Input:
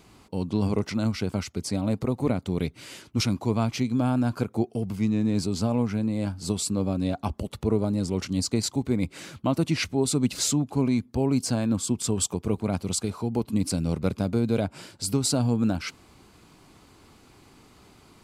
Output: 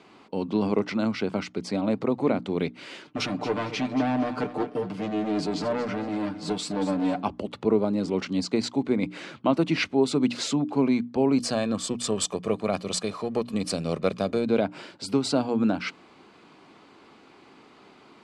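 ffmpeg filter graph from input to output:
ffmpeg -i in.wav -filter_complex "[0:a]asettb=1/sr,asplit=3[link_01][link_02][link_03];[link_01]atrim=end=3.074[link_04];[link_02]atrim=start=3.07:end=7.23,asetpts=PTS-STARTPTS,afade=type=in:duration=0.004:curve=qsin,afade=type=out:start_time=4.156:duration=0.004:curve=qsin,asoftclip=type=hard:threshold=-24dB,aecho=1:1:6.7:0.7,atrim=end_sample=183456,aecho=1:1:229|458|687:0.237|0.0711|0.0213,atrim=end_sample=183456[link_05];[link_03]atrim=start=7.226[link_06];[link_04][link_05]acrossfade=duration=0.004:curve1=hsin:curve2=qsin[link_07];[link_07][link_06]acrossfade=duration=0.004:curve1=qsin:curve2=hsin,asettb=1/sr,asplit=3[link_08][link_09][link_10];[link_08]atrim=end=11.384[link_11];[link_09]atrim=start=11.38:end=14.45,asetpts=PTS-STARTPTS,afade=type=in:duration=0.004:curve=qsin,afade=type=out:start_time=3.066:duration=0.004:curve=qsin,aeval=exprs='if(lt(val(0),0),0.708*val(0),val(0))':channel_layout=same,highshelf=frequency=4900:gain=11.5,aecho=1:1:1.7:0.45,atrim=end_sample=135387[link_12];[link_10]atrim=start=14.446[link_13];[link_11][link_12]acrossfade=duration=0.004:curve1=hsin:curve2=qsin[link_14];[link_14][link_13]acrossfade=duration=0.004:curve1=qsin:curve2=hsin,lowpass=frequency=10000:width=0.5412,lowpass=frequency=10000:width=1.3066,acrossover=split=180 4200:gain=0.0708 1 0.141[link_15][link_16][link_17];[link_15][link_16][link_17]amix=inputs=3:normalize=0,bandreject=frequency=60:width_type=h:width=6,bandreject=frequency=120:width_type=h:width=6,bandreject=frequency=180:width_type=h:width=6,bandreject=frequency=240:width_type=h:width=6,bandreject=frequency=300:width_type=h:width=6,volume=4dB" out.wav

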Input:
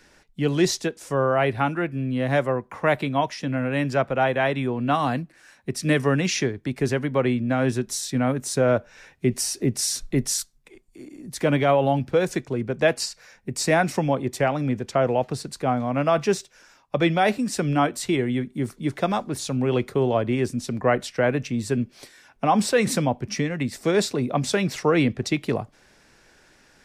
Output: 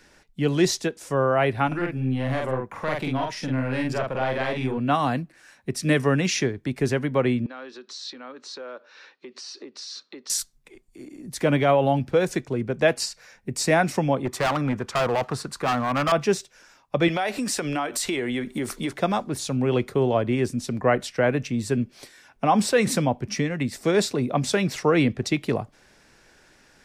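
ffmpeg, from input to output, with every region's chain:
ffmpeg -i in.wav -filter_complex "[0:a]asettb=1/sr,asplit=3[link_01][link_02][link_03];[link_01]atrim=end=1.674[link_04];[link_02]atrim=start=1.67:end=4.78,asetpts=PTS-STARTPTS,afade=type=in:duration=0.004:curve=qsin,afade=type=out:start_time=3.106:duration=0.004:curve=qsin,acompressor=threshold=-23dB:ratio=2:attack=3.2:release=140:knee=1:detection=peak,aeval=exprs='(tanh(8.91*val(0)+0.35)-tanh(0.35))/8.91':channel_layout=same,asplit=2[link_05][link_06];[link_06]adelay=46,volume=-2dB[link_07];[link_05][link_07]amix=inputs=2:normalize=0,atrim=end_sample=137151[link_08];[link_03]atrim=start=4.776[link_09];[link_04][link_08]acrossfade=duration=0.004:curve1=hsin:curve2=qsin[link_10];[link_10][link_09]acrossfade=duration=0.004:curve1=qsin:curve2=hsin,asettb=1/sr,asplit=3[link_11][link_12][link_13];[link_11]atrim=end=7.464[link_14];[link_12]atrim=start=7.46:end=10.3,asetpts=PTS-STARTPTS,afade=type=in:duration=0.004:curve=qsin,afade=type=out:start_time=2.836:duration=0.004:curve=qsin,acompressor=threshold=-32dB:ratio=4:attack=3.2:release=140:knee=1:detection=peak,highpass=frequency=330:width=0.5412,highpass=frequency=330:width=1.3066,equalizer=frequency=400:width_type=q:width=4:gain=-3,equalizer=frequency=690:width_type=q:width=4:gain=-9,equalizer=frequency=1200:width_type=q:width=4:gain=5,equalizer=frequency=2100:width_type=q:width=4:gain=-4,equalizer=frequency=4200:width_type=q:width=4:gain=9,lowpass=frequency=5100:width=0.5412,lowpass=frequency=5100:width=1.3066[link_15];[link_13]atrim=start=10.296[link_16];[link_14][link_15]acrossfade=duration=0.004:curve1=hsin:curve2=qsin[link_17];[link_17][link_16]acrossfade=duration=0.004:curve1=qsin:curve2=hsin,asettb=1/sr,asplit=3[link_18][link_19][link_20];[link_18]atrim=end=14.254[link_21];[link_19]atrim=start=14.25:end=16.12,asetpts=PTS-STARTPTS,afade=type=in:duration=0.004:curve=qsin,afade=type=out:start_time=1.866:duration=0.004:curve=qsin,equalizer=frequency=1200:width_type=o:width=0.92:gain=13,asoftclip=type=hard:threshold=-19.5dB[link_22];[link_20]atrim=start=16.116[link_23];[link_21][link_22]acrossfade=duration=0.004:curve1=hsin:curve2=qsin[link_24];[link_24][link_23]acrossfade=duration=0.004:curve1=qsin:curve2=hsin,asettb=1/sr,asplit=3[link_25][link_26][link_27];[link_25]atrim=end=17.084[link_28];[link_26]atrim=start=17.08:end=18.93,asetpts=PTS-STARTPTS,afade=type=in:duration=0.004:curve=qsin,afade=type=out:start_time=1.846:duration=0.004:curve=qsin,equalizer=frequency=130:width=0.58:gain=-13.5,acompressor=threshold=-38dB:ratio=5:attack=3.2:release=140:knee=1:detection=peak,aeval=exprs='0.178*sin(PI/2*3.16*val(0)/0.178)':channel_layout=same[link_29];[link_27]atrim=start=18.926[link_30];[link_28][link_29]acrossfade=duration=0.004:curve1=hsin:curve2=qsin[link_31];[link_31][link_30]acrossfade=duration=0.004:curve1=qsin:curve2=hsin" out.wav

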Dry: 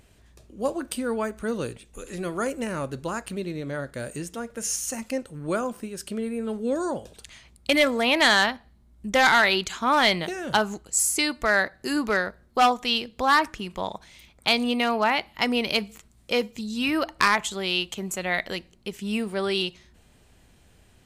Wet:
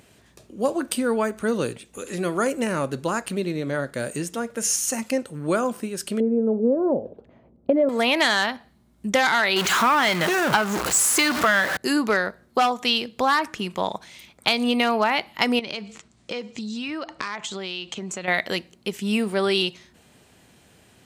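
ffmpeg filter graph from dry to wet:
ffmpeg -i in.wav -filter_complex "[0:a]asettb=1/sr,asplit=3[link_01][link_02][link_03];[link_01]atrim=end=6.204[link_04];[link_02]atrim=start=6.2:end=7.89,asetpts=PTS-STARTPTS,afade=type=in:duration=0.004:curve=qsin,afade=type=out:start_time=1.686:duration=0.004:curve=qsin,lowpass=frequency=550:width_type=q:width=1.9,equalizer=frequency=250:width=3.9:gain=5[link_05];[link_03]atrim=start=7.886[link_06];[link_04][link_05]acrossfade=duration=0.004:curve1=hsin:curve2=qsin[link_07];[link_07][link_06]acrossfade=duration=0.004:curve1=qsin:curve2=hsin,asettb=1/sr,asplit=3[link_08][link_09][link_10];[link_08]atrim=end=9.564[link_11];[link_09]atrim=start=9.56:end=11.77,asetpts=PTS-STARTPTS,afade=type=in:duration=0.004:curve=qsin,afade=type=out:start_time=2.206:duration=0.004:curve=qsin,aeval=exprs='val(0)+0.5*0.0668*sgn(val(0))':channel_layout=same,equalizer=frequency=1300:width_type=o:width=1.5:gain=8,aeval=exprs='(tanh(2*val(0)+0.55)-tanh(0.55))/2':channel_layout=same[link_12];[link_10]atrim=start=11.766[link_13];[link_11][link_12]acrossfade=duration=0.004:curve1=hsin:curve2=qsin[link_14];[link_14][link_13]acrossfade=duration=0.004:curve1=qsin:curve2=hsin,asettb=1/sr,asplit=3[link_15][link_16][link_17];[link_15]atrim=end=15.594[link_18];[link_16]atrim=start=15.59:end=18.28,asetpts=PTS-STARTPTS,afade=type=in:duration=0.004:curve=qsin,afade=type=out:start_time=2.686:duration=0.004:curve=qsin,lowpass=frequency=7500:width=0.5412,lowpass=frequency=7500:width=1.3066,acompressor=threshold=-33dB:ratio=6:attack=3.2:release=140:knee=1:detection=peak[link_19];[link_17]atrim=start=18.276[link_20];[link_18][link_19]acrossfade=duration=0.004:curve1=hsin:curve2=qsin[link_21];[link_21][link_20]acrossfade=duration=0.004:curve1=qsin:curve2=hsin,highpass=130,acompressor=threshold=-22dB:ratio=6,volume=5.5dB" out.wav

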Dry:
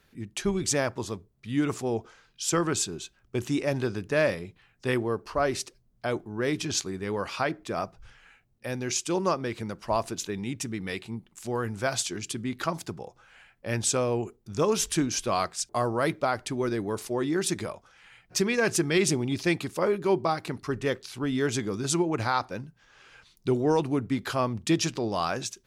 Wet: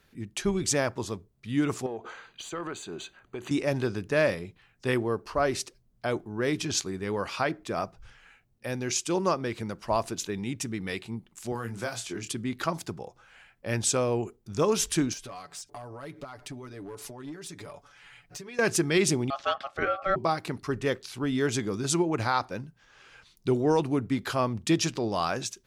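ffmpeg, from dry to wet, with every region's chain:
ffmpeg -i in.wav -filter_complex "[0:a]asettb=1/sr,asplit=3[link_01][link_02][link_03];[link_01]atrim=end=1.864[link_04];[link_02]atrim=start=1.86:end=3.51,asetpts=PTS-STARTPTS,afade=type=in:duration=0.004:curve=qsin,afade=type=out:start_time=1.646:duration=0.004:curve=qsin,acompressor=threshold=-41dB:ratio=6:attack=3.2:release=140:knee=1:detection=peak,asplit=2[link_05][link_06];[link_06]highpass=frequency=720:poles=1,volume=21dB,asoftclip=type=tanh:threshold=-19dB[link_07];[link_05][link_07]amix=inputs=2:normalize=0,lowpass=frequency=1600:poles=1,volume=-6dB,asuperstop=centerf=5300:order=12:qfactor=5.4[link_08];[link_03]atrim=start=3.506[link_09];[link_04][link_08]acrossfade=duration=0.004:curve1=hsin:curve2=qsin[link_10];[link_10][link_09]acrossfade=duration=0.004:curve1=qsin:curve2=hsin,asettb=1/sr,asplit=3[link_11][link_12][link_13];[link_11]atrim=end=11.524[link_14];[link_12]atrim=start=11.52:end=12.3,asetpts=PTS-STARTPTS,afade=type=in:duration=0.004:curve=qsin,afade=type=out:start_time=0.776:duration=0.004:curve=qsin,acrossover=split=94|2800|6900[link_15][link_16][link_17][link_18];[link_15]acompressor=threshold=-57dB:ratio=3[link_19];[link_16]acompressor=threshold=-32dB:ratio=3[link_20];[link_17]acompressor=threshold=-48dB:ratio=3[link_21];[link_18]acompressor=threshold=-43dB:ratio=3[link_22];[link_19][link_20][link_21][link_22]amix=inputs=4:normalize=0,asplit=2[link_23][link_24];[link_24]adelay=26,volume=-6dB[link_25];[link_23][link_25]amix=inputs=2:normalize=0,atrim=end_sample=34398[link_26];[link_13]atrim=start=12.296[link_27];[link_14][link_26]acrossfade=duration=0.004:curve1=hsin:curve2=qsin[link_28];[link_28][link_27]acrossfade=duration=0.004:curve1=qsin:curve2=hsin,asettb=1/sr,asplit=3[link_29][link_30][link_31];[link_29]atrim=end=15.134[link_32];[link_30]atrim=start=15.13:end=18.59,asetpts=PTS-STARTPTS,afade=type=in:duration=0.004:curve=qsin,afade=type=out:start_time=3.456:duration=0.004:curve=qsin,acompressor=threshold=-38dB:ratio=16:attack=3.2:release=140:knee=1:detection=peak,aecho=1:1:7:0.67,atrim=end_sample=152586,aeval=exprs='clip(val(0),-1,0.0168)':channel_layout=same[link_33];[link_31]atrim=start=18.586[link_34];[link_32][link_33]acrossfade=duration=0.004:curve1=hsin:curve2=qsin[link_35];[link_35][link_34]acrossfade=duration=0.004:curve1=qsin:curve2=hsin,asettb=1/sr,asplit=3[link_36][link_37][link_38];[link_36]atrim=end=19.304[link_39];[link_37]atrim=start=19.3:end=20.16,asetpts=PTS-STARTPTS,afade=type=in:duration=0.004:curve=qsin,afade=type=out:start_time=0.856:duration=0.004:curve=qsin,highpass=140,lowpass=2900,aeval=exprs='val(0)*sin(2*PI*960*n/s)':channel_layout=same[link_40];[link_38]atrim=start=20.156[link_41];[link_39][link_40]acrossfade=duration=0.004:curve1=hsin:curve2=qsin[link_42];[link_42][link_41]acrossfade=duration=0.004:curve1=qsin:curve2=hsin" out.wav

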